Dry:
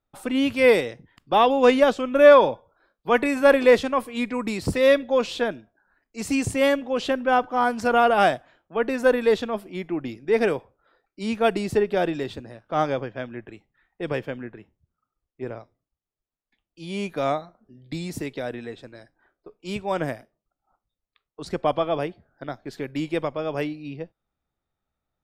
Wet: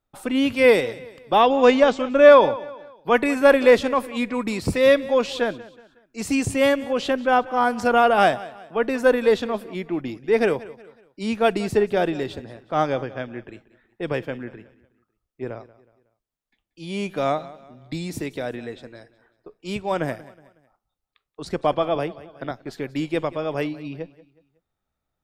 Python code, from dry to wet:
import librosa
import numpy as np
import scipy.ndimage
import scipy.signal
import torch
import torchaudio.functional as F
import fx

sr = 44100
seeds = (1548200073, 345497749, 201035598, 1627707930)

y = fx.steep_lowpass(x, sr, hz=8100.0, slope=48, at=(1.42, 2.29))
y = fx.echo_feedback(y, sr, ms=184, feedback_pct=40, wet_db=-19)
y = fx.band_squash(y, sr, depth_pct=40, at=(21.95, 22.51))
y = F.gain(torch.from_numpy(y), 1.5).numpy()